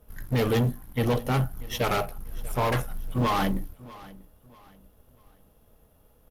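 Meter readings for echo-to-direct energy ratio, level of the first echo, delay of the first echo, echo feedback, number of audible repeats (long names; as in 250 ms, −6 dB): −20.0 dB, −20.5 dB, 640 ms, 34%, 2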